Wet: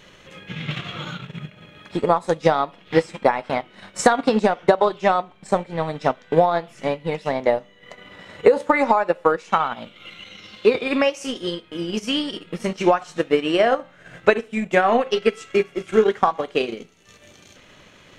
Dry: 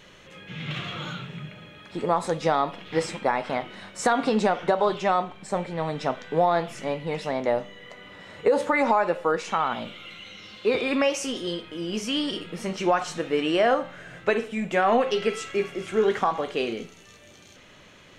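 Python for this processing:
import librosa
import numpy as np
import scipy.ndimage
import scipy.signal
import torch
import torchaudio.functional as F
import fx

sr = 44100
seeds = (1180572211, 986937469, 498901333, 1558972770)

y = fx.transient(x, sr, attack_db=7, sustain_db=-10)
y = y * 10.0 ** (2.0 / 20.0)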